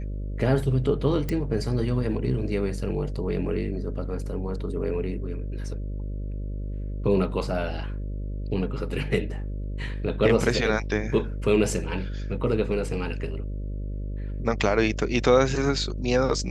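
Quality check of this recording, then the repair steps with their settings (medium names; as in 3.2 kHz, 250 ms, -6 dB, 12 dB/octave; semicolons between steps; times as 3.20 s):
buzz 50 Hz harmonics 12 -31 dBFS
1.29 s: pop -15 dBFS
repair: de-click; de-hum 50 Hz, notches 12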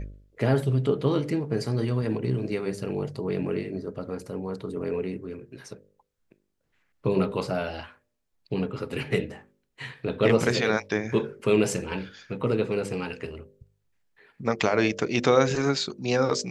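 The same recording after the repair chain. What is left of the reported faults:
nothing left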